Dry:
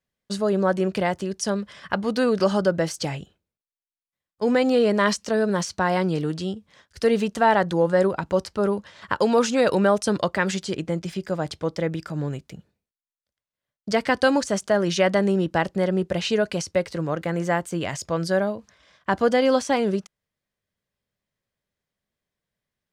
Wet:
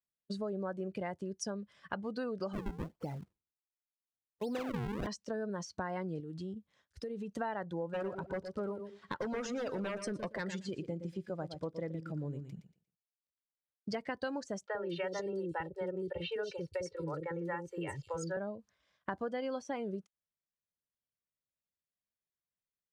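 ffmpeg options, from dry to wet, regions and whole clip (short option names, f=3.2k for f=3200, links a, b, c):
-filter_complex "[0:a]asettb=1/sr,asplit=3[a][b][c];[a]atrim=end=2.534[d];[b]atrim=start=2.53:end=5.07,asetpts=PTS-STARTPTS,afade=t=in:d=0.004:c=qsin,afade=t=out:st=2.536:d=0.004:c=qsin,lowpass=f=3.1k:w=0.5412,lowpass=f=3.1k:w=1.3066,acrusher=samples=42:mix=1:aa=0.000001:lfo=1:lforange=67.2:lforate=1.4[e];[c]atrim=start=5.066[f];[d][e]acrossfade=d=0.004:c1=hsin:c2=qsin[g];[g][f]acrossfade=d=0.004:c1=qsin:c2=hsin,asettb=1/sr,asplit=3[h][i][j];[h]atrim=end=6.204[k];[i]atrim=start=6.2:end=7.31,asetpts=PTS-STARTPTS,afade=t=in:d=0.004:c=qsin,afade=t=out:st=1.106:d=0.004:c=qsin,bandreject=f=4.7k:w=19,acompressor=threshold=-31dB:ratio=4:attack=3.2:release=140:knee=1:detection=peak[l];[j]atrim=start=7.306[m];[k][l]acrossfade=d=0.004:c1=hsin:c2=qsin[n];[n][m]acrossfade=d=0.004:c1=qsin:c2=hsin,asettb=1/sr,asplit=3[o][p][q];[o]atrim=end=7.904[r];[p]atrim=start=7.9:end=13.95,asetpts=PTS-STARTPTS,afade=t=in:d=0.004:c=qsin,afade=t=out:st=6.046:d=0.004:c=qsin,aeval=exprs='0.168*(abs(mod(val(0)/0.168+3,4)-2)-1)':c=same,aecho=1:1:117|234|351:0.335|0.0871|0.0226,atrim=end_sample=266805[s];[q]atrim=start=13.946[t];[r][s]acrossfade=d=0.004:c1=hsin:c2=qsin[u];[u][t]acrossfade=d=0.004:c1=qsin:c2=hsin,asettb=1/sr,asplit=3[v][w][x];[v]atrim=end=14.664[y];[w]atrim=start=14.66:end=18.37,asetpts=PTS-STARTPTS,afade=t=in:d=0.004:c=qsin,afade=t=out:st=3.706:d=0.004:c=qsin,aecho=1:1:2.2:0.87,atrim=end_sample=163611,acrossover=split=470|4000[z][aa][ab];[z]adelay=50[ac];[ab]adelay=220[ad];[ac][aa][ad]amix=inputs=3:normalize=0,atrim=end_sample=163611[ae];[x]atrim=start=18.366[af];[y][ae]acrossfade=d=0.004:c1=hsin:c2=qsin[ag];[ag][af]acrossfade=d=0.004:c1=qsin:c2=hsin,afftdn=nr=14:nf=-30,acompressor=threshold=-32dB:ratio=4,volume=-5dB"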